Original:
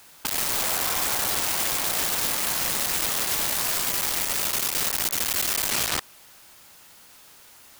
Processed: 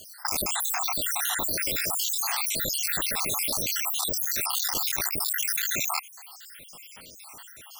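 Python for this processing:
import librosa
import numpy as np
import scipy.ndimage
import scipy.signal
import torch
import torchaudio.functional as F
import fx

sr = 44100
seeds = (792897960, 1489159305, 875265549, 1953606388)

p1 = fx.spec_dropout(x, sr, seeds[0], share_pct=75)
p2 = fx.over_compress(p1, sr, threshold_db=-38.0, ratio=-1.0)
y = p1 + F.gain(torch.from_numpy(p2), 1.0).numpy()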